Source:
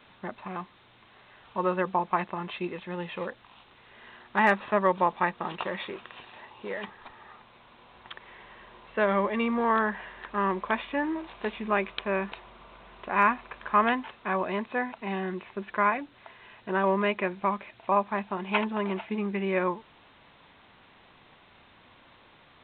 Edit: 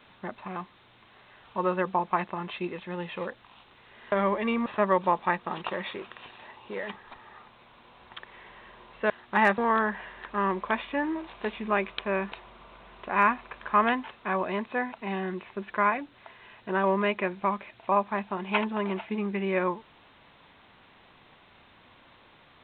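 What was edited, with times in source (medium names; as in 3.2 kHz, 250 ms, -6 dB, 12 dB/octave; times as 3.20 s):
4.12–4.60 s: swap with 9.04–9.58 s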